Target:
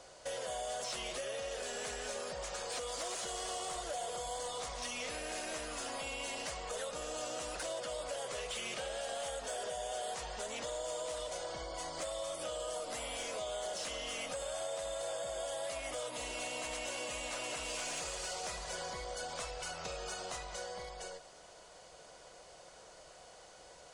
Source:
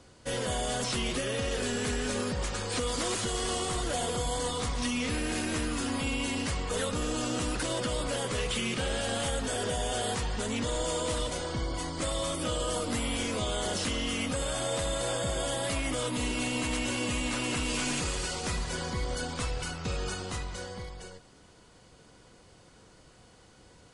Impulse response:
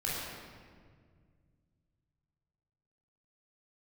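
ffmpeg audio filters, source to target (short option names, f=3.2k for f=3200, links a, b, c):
-af "equalizer=f=100:t=o:w=0.67:g=-10,equalizer=f=250:t=o:w=0.67:g=-9,equalizer=f=630:t=o:w=0.67:g=12,equalizer=f=6.3k:t=o:w=0.67:g=4,acompressor=threshold=-39dB:ratio=3,lowshelf=f=440:g=-8,asoftclip=type=tanh:threshold=-30dB,volume=1dB"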